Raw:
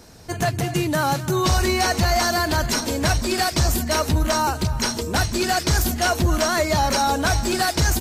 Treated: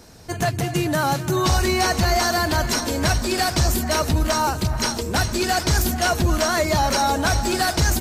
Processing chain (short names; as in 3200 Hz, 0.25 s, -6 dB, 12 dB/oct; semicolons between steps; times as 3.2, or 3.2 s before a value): echo with dull and thin repeats by turns 0.434 s, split 2000 Hz, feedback 58%, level -13 dB